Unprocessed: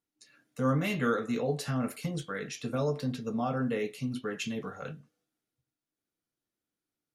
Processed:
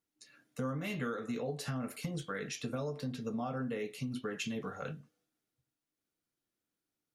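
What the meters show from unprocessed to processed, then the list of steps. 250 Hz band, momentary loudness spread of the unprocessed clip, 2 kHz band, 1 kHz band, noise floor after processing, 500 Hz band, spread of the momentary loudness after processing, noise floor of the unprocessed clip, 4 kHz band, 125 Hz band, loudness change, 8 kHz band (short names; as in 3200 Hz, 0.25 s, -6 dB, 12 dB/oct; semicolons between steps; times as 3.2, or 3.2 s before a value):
-6.0 dB, 10 LU, -5.0 dB, -7.0 dB, under -85 dBFS, -6.5 dB, 4 LU, under -85 dBFS, -3.5 dB, -6.5 dB, -6.5 dB, -2.5 dB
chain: compressor 6:1, threshold -34 dBFS, peak gain reduction 11 dB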